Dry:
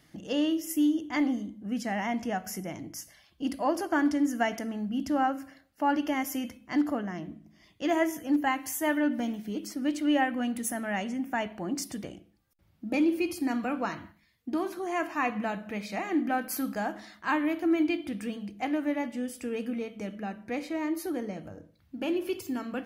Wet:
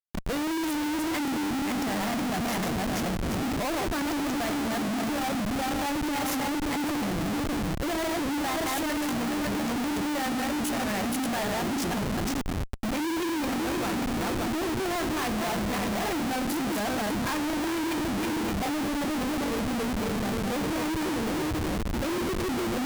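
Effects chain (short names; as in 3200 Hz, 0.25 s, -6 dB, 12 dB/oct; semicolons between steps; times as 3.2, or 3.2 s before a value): regenerating reverse delay 0.287 s, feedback 55%, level -3 dB; Schmitt trigger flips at -36.5 dBFS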